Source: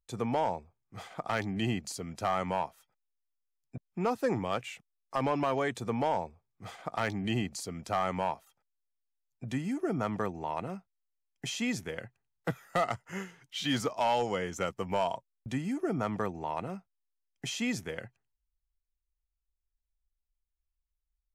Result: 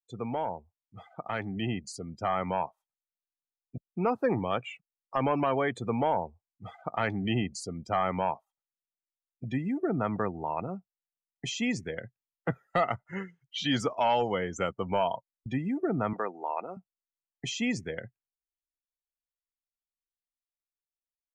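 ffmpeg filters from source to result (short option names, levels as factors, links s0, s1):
-filter_complex "[0:a]asettb=1/sr,asplit=3[s0][s1][s2];[s0]atrim=end=16.134[s3];[s1]atrim=start=16.13:end=16.77,asetpts=PTS-STARTPTS,afade=t=in:d=0.004:c=qsin,afade=t=out:st=0.636:d=0.004:c=qsin,highpass=390[s4];[s2]atrim=start=16.766[s5];[s3][s4]acrossfade=d=0.004:c1=hsin:c2=qsin[s6];[s6][s5]acrossfade=d=0.004:c1=qsin:c2=hsin,afftdn=nr=27:nf=-43,dynaudnorm=f=460:g=9:m=1.78,volume=0.75"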